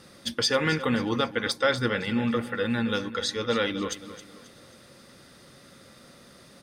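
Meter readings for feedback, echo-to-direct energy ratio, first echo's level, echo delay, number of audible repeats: 39%, −13.5 dB, −14.0 dB, 268 ms, 3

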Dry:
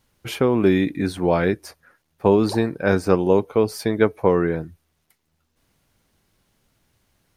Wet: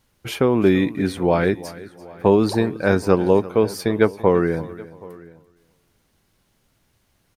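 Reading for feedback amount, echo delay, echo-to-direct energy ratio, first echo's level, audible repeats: repeats not evenly spaced, 339 ms, −16.5 dB, −18.0 dB, 3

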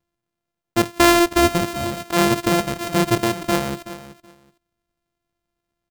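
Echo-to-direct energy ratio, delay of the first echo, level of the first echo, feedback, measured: −14.5 dB, 376 ms, −14.5 dB, 18%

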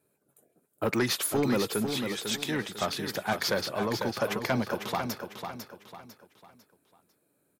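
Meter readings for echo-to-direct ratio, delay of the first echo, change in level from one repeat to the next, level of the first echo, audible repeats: −6.5 dB, 499 ms, −8.5 dB, −7.0 dB, 4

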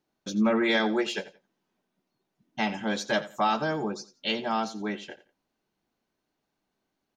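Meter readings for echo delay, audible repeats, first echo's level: 87 ms, 2, −16.5 dB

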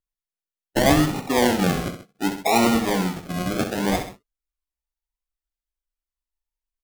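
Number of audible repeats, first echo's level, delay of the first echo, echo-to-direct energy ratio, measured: 2, −9.0 dB, 65 ms, −8.0 dB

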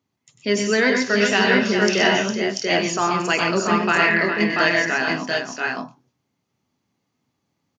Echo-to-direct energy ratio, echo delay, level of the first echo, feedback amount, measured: 1.5 dB, 96 ms, −8.0 dB, repeats not evenly spaced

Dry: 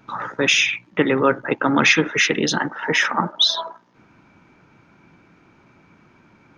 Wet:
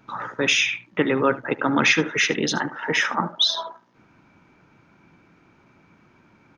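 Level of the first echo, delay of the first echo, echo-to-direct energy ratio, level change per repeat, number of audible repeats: −18.0 dB, 75 ms, −18.0 dB, repeats not evenly spaced, 1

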